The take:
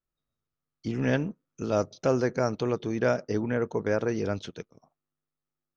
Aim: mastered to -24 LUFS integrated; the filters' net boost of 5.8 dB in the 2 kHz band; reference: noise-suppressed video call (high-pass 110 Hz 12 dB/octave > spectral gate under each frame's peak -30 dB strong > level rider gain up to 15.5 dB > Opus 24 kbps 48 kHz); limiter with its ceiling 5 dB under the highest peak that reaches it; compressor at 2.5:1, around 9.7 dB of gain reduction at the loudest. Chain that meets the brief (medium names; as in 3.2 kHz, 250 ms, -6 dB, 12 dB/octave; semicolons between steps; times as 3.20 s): peaking EQ 2 kHz +8 dB; compression 2.5:1, threshold -34 dBFS; peak limiter -24 dBFS; high-pass 110 Hz 12 dB/octave; spectral gate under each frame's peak -30 dB strong; level rider gain up to 15.5 dB; trim +14 dB; Opus 24 kbps 48 kHz